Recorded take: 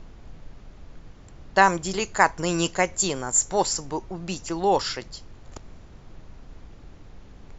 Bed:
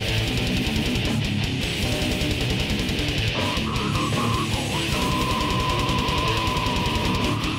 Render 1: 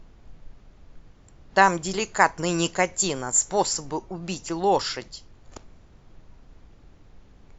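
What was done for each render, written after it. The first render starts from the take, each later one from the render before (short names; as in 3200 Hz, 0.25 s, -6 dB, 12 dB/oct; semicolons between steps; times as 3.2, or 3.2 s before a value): noise print and reduce 6 dB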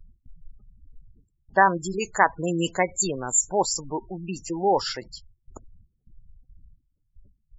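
gate with hold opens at -40 dBFS; spectral gate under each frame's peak -15 dB strong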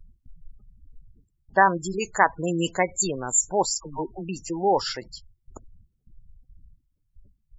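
3.7–4.29 dispersion lows, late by 78 ms, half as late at 970 Hz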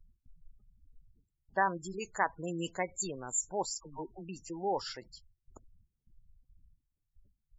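gain -11.5 dB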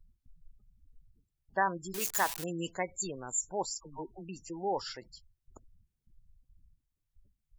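1.94–2.44 switching spikes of -23.5 dBFS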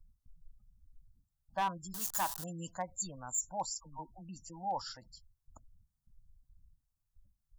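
fixed phaser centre 970 Hz, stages 4; overloaded stage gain 27 dB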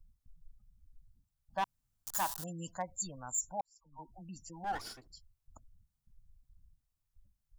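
1.64–2.07 room tone; 3.61–4.13 fade in quadratic; 4.64–5.12 minimum comb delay 2.7 ms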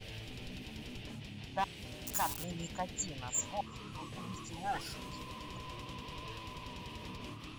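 add bed -23 dB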